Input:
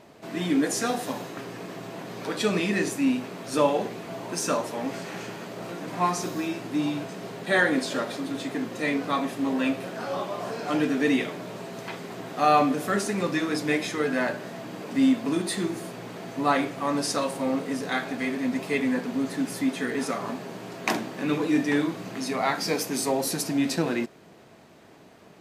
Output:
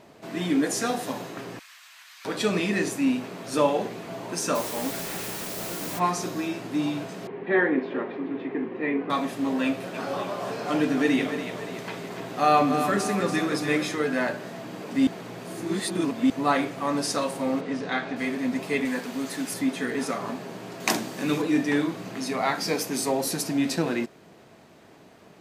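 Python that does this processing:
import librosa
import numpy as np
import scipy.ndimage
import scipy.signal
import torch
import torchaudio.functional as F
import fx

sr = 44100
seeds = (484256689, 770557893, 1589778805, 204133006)

y = fx.bessel_highpass(x, sr, hz=2000.0, order=6, at=(1.59, 2.25))
y = fx.quant_dither(y, sr, seeds[0], bits=6, dither='triangular', at=(4.54, 5.98), fade=0.02)
y = fx.cabinet(y, sr, low_hz=180.0, low_slope=12, high_hz=2300.0, hz=(380.0, 620.0, 1400.0), db=(8, -8, -7), at=(7.27, 9.1))
y = fx.echo_split(y, sr, split_hz=330.0, low_ms=101, high_ms=286, feedback_pct=52, wet_db=-8.0, at=(9.93, 13.94), fade=0.02)
y = fx.lowpass(y, sr, hz=4500.0, slope=12, at=(17.6, 18.15), fade=0.02)
y = fx.tilt_eq(y, sr, slope=2.0, at=(18.85, 19.54))
y = fx.bass_treble(y, sr, bass_db=1, treble_db=9, at=(20.8, 21.42))
y = fx.edit(y, sr, fx.reverse_span(start_s=15.07, length_s=1.23), tone=tone)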